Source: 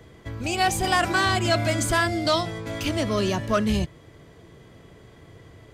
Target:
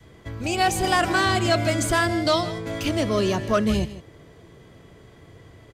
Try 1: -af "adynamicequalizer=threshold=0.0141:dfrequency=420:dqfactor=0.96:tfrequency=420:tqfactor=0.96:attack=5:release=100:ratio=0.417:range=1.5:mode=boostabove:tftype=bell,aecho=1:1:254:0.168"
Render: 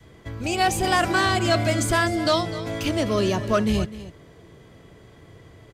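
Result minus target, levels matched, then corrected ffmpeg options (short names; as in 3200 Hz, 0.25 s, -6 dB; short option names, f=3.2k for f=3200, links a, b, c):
echo 97 ms late
-af "adynamicequalizer=threshold=0.0141:dfrequency=420:dqfactor=0.96:tfrequency=420:tqfactor=0.96:attack=5:release=100:ratio=0.417:range=1.5:mode=boostabove:tftype=bell,aecho=1:1:157:0.168"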